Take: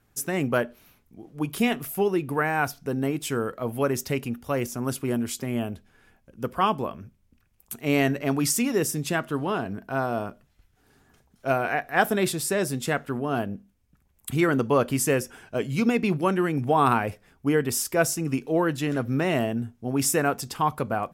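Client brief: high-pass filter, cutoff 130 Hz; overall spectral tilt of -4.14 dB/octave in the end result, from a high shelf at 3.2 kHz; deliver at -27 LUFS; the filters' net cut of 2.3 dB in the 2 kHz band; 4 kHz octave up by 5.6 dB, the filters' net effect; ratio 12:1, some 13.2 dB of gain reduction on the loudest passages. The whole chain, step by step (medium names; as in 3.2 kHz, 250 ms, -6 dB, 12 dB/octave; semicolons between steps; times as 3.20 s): high-pass 130 Hz; peaking EQ 2 kHz -6 dB; treble shelf 3.2 kHz +3.5 dB; peaking EQ 4 kHz +7 dB; compression 12:1, threshold -30 dBFS; trim +8 dB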